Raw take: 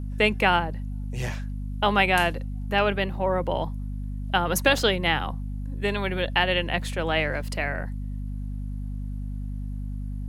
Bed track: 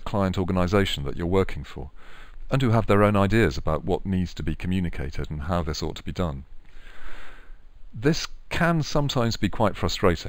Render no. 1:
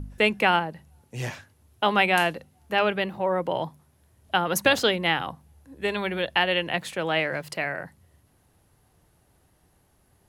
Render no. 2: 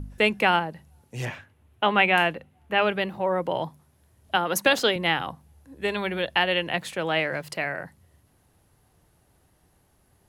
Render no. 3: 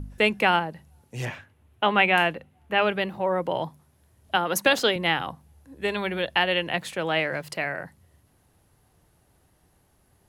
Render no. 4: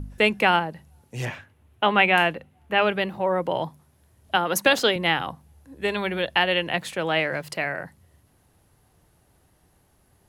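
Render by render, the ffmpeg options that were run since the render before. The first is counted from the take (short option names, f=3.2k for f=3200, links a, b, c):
-af "bandreject=f=50:t=h:w=4,bandreject=f=100:t=h:w=4,bandreject=f=150:t=h:w=4,bandreject=f=200:t=h:w=4,bandreject=f=250:t=h:w=4"
-filter_complex "[0:a]asettb=1/sr,asplit=3[a][b][c];[a]atrim=end=1.254[d];[b]atrim=start=1.25:end=2.82,asetpts=PTS-STARTPTS,afade=t=in:d=0.004:c=qsin,afade=t=out:st=1.566:d=0.004:c=qsin,highshelf=f=3.7k:t=q:w=1.5:g=-8.5[e];[c]atrim=start=2.816[f];[d][e]acrossfade=d=0.004:c1=hsin:c2=qsin[g];[g][f]acrossfade=d=0.004:c1=qsin:c2=hsin,asettb=1/sr,asplit=3[h][i][j];[h]atrim=end=4.364[k];[i]atrim=start=4.36:end=4.96,asetpts=PTS-STARTPTS,afade=t=in:d=0.004:c=qsin,afade=t=out:st=0.596:d=0.004:c=qsin,highpass=190[l];[j]atrim=start=4.956[m];[k][l]acrossfade=d=0.004:c1=hsin:c2=qsin[n];[n][m]acrossfade=d=0.004:c1=qsin:c2=hsin"
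-af anull
-af "volume=1.5dB"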